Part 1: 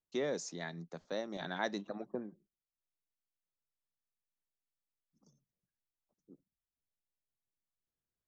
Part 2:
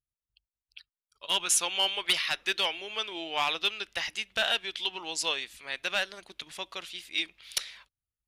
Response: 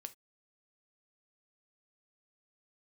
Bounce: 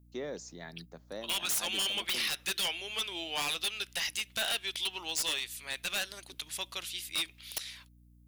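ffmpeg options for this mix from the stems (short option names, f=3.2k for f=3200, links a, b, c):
-filter_complex "[0:a]aeval=exprs='val(0)+0.00178*(sin(2*PI*60*n/s)+sin(2*PI*2*60*n/s)/2+sin(2*PI*3*60*n/s)/3+sin(2*PI*4*60*n/s)/4+sin(2*PI*5*60*n/s)/5)':c=same,volume=-3.5dB[a];[1:a]aemphasis=mode=production:type=75fm,alimiter=limit=-12.5dB:level=0:latency=1:release=116,volume=-3.5dB,asplit=2[b][c];[c]apad=whole_len=365124[d];[a][d]sidechaincompress=threshold=-31dB:ratio=8:attack=16:release=158[e];[e][b]amix=inputs=2:normalize=0,aeval=exprs='0.0562*(abs(mod(val(0)/0.0562+3,4)-2)-1)':c=same"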